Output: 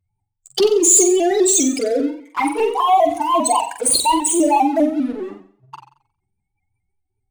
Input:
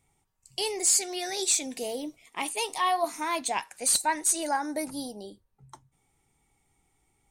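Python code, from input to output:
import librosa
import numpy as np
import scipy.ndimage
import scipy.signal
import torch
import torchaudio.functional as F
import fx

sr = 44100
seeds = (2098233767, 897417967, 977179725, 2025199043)

y = fx.spec_expand(x, sr, power=3.0)
y = fx.peak_eq(y, sr, hz=210.0, db=14.5, octaves=0.67, at=(0.6, 1.31))
y = fx.lowpass(y, sr, hz=1100.0, slope=6, at=(2.48, 3.17))
y = fx.leveller(y, sr, passes=3)
y = fx.env_flanger(y, sr, rest_ms=10.4, full_db=-18.0)
y = fx.room_flutter(y, sr, wall_m=7.7, rt60_s=0.5)
y = fx.vibrato_shape(y, sr, shape='saw_up', rate_hz=5.0, depth_cents=100.0)
y = y * librosa.db_to_amplitude(6.5)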